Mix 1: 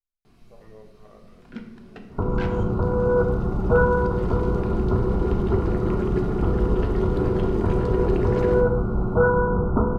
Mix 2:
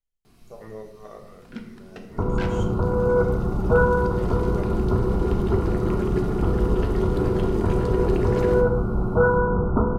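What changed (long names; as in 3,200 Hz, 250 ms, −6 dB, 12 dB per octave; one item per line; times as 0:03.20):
speech +9.0 dB
master: add high-shelf EQ 6,400 Hz +12 dB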